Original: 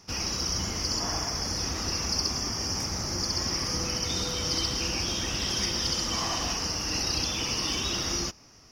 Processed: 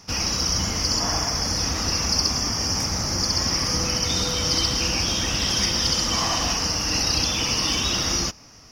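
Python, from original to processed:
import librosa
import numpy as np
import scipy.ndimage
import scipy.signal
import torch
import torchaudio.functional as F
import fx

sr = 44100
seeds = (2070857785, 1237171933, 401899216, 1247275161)

y = fx.peak_eq(x, sr, hz=370.0, db=-7.0, octaves=0.23)
y = F.gain(torch.from_numpy(y), 6.5).numpy()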